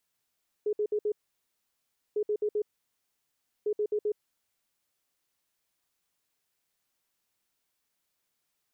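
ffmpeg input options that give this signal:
-f lavfi -i "aevalsrc='0.0562*sin(2*PI*420*t)*clip(min(mod(mod(t,1.5),0.13),0.07-mod(mod(t,1.5),0.13))/0.005,0,1)*lt(mod(t,1.5),0.52)':d=4.5:s=44100"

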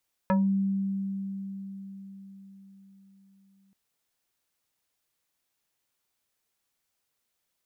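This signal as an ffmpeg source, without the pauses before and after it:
-f lavfi -i "aevalsrc='0.106*pow(10,-3*t/4.88)*sin(2*PI*195*t+1.6*pow(10,-3*t/0.23)*sin(2*PI*3.87*195*t))':d=3.43:s=44100"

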